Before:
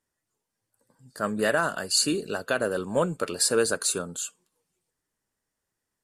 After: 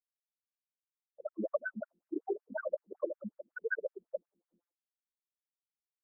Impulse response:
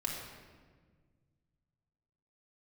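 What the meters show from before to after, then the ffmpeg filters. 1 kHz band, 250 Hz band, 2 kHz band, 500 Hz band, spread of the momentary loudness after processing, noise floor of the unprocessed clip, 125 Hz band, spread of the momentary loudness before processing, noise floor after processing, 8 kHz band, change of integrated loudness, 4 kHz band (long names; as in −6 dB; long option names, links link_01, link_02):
−17.5 dB, −12.5 dB, −11.0 dB, −10.5 dB, 8 LU, −84 dBFS, below −20 dB, 9 LU, below −85 dBFS, below −40 dB, −14.0 dB, below −40 dB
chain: -filter_complex "[0:a]equalizer=frequency=250:width_type=o:width=0.67:gain=-8,equalizer=frequency=1000:width_type=o:width=0.67:gain=-6,equalizer=frequency=6300:width_type=o:width=0.67:gain=-3,asplit=2[link_01][link_02];[link_02]asoftclip=type=tanh:threshold=-25.5dB,volume=-6.5dB[link_03];[link_01][link_03]amix=inputs=2:normalize=0,equalizer=frequency=77:width=1.6:gain=12.5,bandreject=frequency=60:width_type=h:width=6,bandreject=frequency=120:width_type=h:width=6,bandreject=frequency=180:width_type=h:width=6,bandreject=frequency=240:width_type=h:width=6,bandreject=frequency=300:width_type=h:width=6,bandreject=frequency=360:width_type=h:width=6,bandreject=frequency=420:width_type=h:width=6,bandreject=frequency=480:width_type=h:width=6[link_04];[1:a]atrim=start_sample=2205,afade=type=out:start_time=0.21:duration=0.01,atrim=end_sample=9702[link_05];[link_04][link_05]afir=irnorm=-1:irlink=0,aphaser=in_gain=1:out_gain=1:delay=1.9:decay=0.53:speed=1.3:type=triangular,aeval=exprs='max(val(0),0)':channel_layout=same,acompressor=threshold=-37dB:ratio=10,acrossover=split=220|2900[link_06][link_07][link_08];[link_08]adelay=180[link_09];[link_06]adelay=300[link_10];[link_10][link_07][link_09]amix=inputs=3:normalize=0,afftfilt=real='re*gte(hypot(re,im),0.0251)':imag='im*gte(hypot(re,im),0.0251)':win_size=1024:overlap=0.75,afftfilt=real='re*between(b*sr/1024,260*pow(2100/260,0.5+0.5*sin(2*PI*5.4*pts/sr))/1.41,260*pow(2100/260,0.5+0.5*sin(2*PI*5.4*pts/sr))*1.41)':imag='im*between(b*sr/1024,260*pow(2100/260,0.5+0.5*sin(2*PI*5.4*pts/sr))/1.41,260*pow(2100/260,0.5+0.5*sin(2*PI*5.4*pts/sr))*1.41)':win_size=1024:overlap=0.75,volume=17dB"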